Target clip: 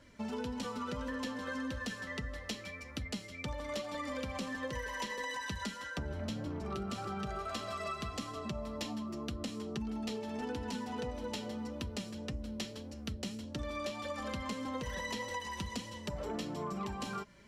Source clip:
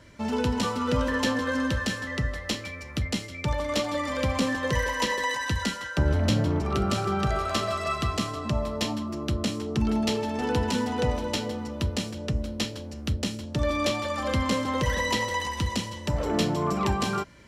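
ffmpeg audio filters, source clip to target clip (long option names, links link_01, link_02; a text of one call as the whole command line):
ffmpeg -i in.wav -af "flanger=delay=3.5:depth=1.9:regen=38:speed=1.7:shape=triangular,acompressor=threshold=-32dB:ratio=6,volume=-3.5dB" out.wav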